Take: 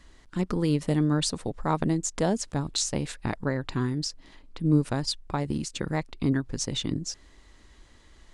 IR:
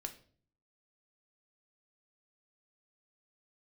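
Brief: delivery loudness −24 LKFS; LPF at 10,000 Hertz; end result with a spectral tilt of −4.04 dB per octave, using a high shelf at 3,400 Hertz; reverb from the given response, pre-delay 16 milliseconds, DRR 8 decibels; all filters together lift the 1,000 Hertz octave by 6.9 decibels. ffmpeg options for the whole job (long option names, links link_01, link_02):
-filter_complex "[0:a]lowpass=10000,equalizer=frequency=1000:width_type=o:gain=8,highshelf=frequency=3400:gain=7,asplit=2[link_01][link_02];[1:a]atrim=start_sample=2205,adelay=16[link_03];[link_02][link_03]afir=irnorm=-1:irlink=0,volume=-5.5dB[link_04];[link_01][link_04]amix=inputs=2:normalize=0,volume=1.5dB"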